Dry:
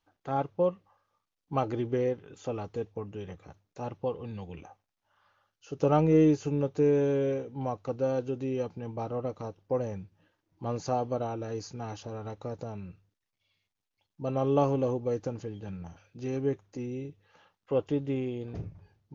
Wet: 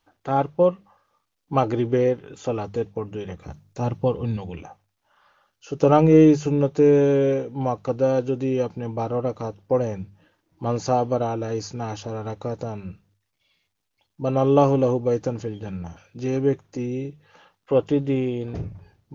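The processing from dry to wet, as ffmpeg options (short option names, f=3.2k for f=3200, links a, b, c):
-filter_complex "[0:a]asettb=1/sr,asplit=3[a][b][c];[a]atrim=end=3.414[d];[b]atrim=start=3.41:end=4.37,asetpts=PTS-STARTPTS,afade=t=in:d=0.004:c=qsin,afade=t=out:st=0.956:d=0.004:c=qsin,bass=f=250:g=8,treble=f=4k:g=4[e];[c]atrim=start=4.366[f];[d][e]acrossfade=d=0.004:c1=hsin:c2=qsin[g];[g][f]acrossfade=d=0.004:c1=qsin:c2=hsin,bandreject=f=50:t=h:w=6,bandreject=f=100:t=h:w=6,bandreject=f=150:t=h:w=6,bandreject=f=200:t=h:w=6,volume=8.5dB"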